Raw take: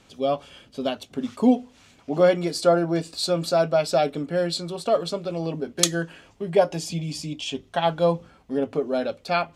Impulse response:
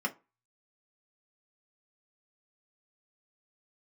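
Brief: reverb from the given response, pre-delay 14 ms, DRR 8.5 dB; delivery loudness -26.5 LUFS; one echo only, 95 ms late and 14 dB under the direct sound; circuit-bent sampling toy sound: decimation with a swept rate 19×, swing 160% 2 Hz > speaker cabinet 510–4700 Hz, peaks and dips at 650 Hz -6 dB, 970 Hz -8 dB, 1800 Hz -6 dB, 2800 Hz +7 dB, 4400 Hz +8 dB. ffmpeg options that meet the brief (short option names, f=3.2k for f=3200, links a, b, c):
-filter_complex "[0:a]aecho=1:1:95:0.2,asplit=2[a][b];[1:a]atrim=start_sample=2205,adelay=14[c];[b][c]afir=irnorm=-1:irlink=0,volume=-14.5dB[d];[a][d]amix=inputs=2:normalize=0,acrusher=samples=19:mix=1:aa=0.000001:lfo=1:lforange=30.4:lforate=2,highpass=510,equalizer=f=650:t=q:w=4:g=-6,equalizer=f=970:t=q:w=4:g=-8,equalizer=f=1.8k:t=q:w=4:g=-6,equalizer=f=2.8k:t=q:w=4:g=7,equalizer=f=4.4k:t=q:w=4:g=8,lowpass=f=4.7k:w=0.5412,lowpass=f=4.7k:w=1.3066"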